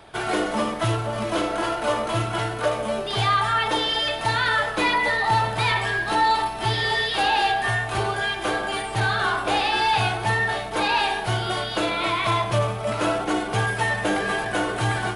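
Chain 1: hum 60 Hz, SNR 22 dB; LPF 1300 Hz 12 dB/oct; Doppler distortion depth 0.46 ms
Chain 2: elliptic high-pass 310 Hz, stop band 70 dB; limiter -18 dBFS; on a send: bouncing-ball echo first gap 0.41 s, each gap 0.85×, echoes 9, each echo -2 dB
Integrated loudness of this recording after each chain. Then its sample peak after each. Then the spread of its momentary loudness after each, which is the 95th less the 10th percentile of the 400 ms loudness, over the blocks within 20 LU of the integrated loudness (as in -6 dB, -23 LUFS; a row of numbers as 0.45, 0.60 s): -25.5, -22.0 LUFS; -11.5, -10.0 dBFS; 4, 3 LU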